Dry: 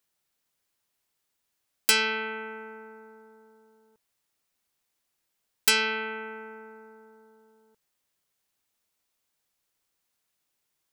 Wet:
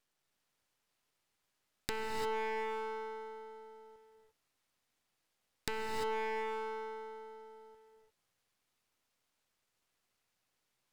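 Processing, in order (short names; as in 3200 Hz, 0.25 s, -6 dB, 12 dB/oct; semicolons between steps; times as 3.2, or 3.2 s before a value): treble ducked by the level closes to 880 Hz, closed at -28 dBFS; LPF 3800 Hz 6 dB/oct; compressor, threshold -36 dBFS, peak gain reduction 7 dB; half-wave rectifier; non-linear reverb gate 0.37 s rising, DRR 2 dB; gain +4.5 dB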